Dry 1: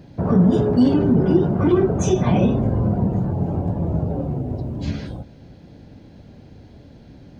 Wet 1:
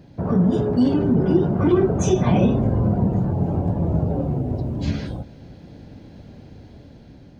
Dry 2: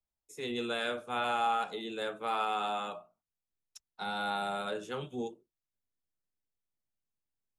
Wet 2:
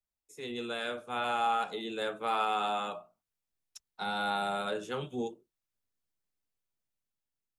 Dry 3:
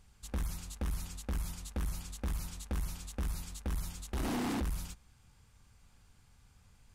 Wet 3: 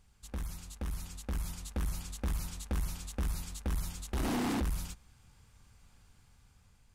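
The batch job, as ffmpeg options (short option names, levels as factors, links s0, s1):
-af "dynaudnorm=f=520:g=5:m=1.78,volume=0.708"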